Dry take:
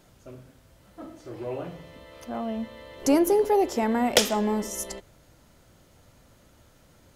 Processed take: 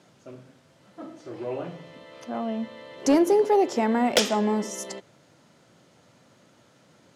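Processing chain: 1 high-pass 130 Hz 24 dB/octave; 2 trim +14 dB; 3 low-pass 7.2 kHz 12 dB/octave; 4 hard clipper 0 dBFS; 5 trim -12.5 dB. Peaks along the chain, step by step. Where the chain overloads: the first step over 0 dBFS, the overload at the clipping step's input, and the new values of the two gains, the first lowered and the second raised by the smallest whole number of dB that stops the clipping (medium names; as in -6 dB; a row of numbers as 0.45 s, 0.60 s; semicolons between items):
-5.0 dBFS, +9.0 dBFS, +9.0 dBFS, 0.0 dBFS, -12.5 dBFS; step 2, 9.0 dB; step 2 +5 dB, step 5 -3.5 dB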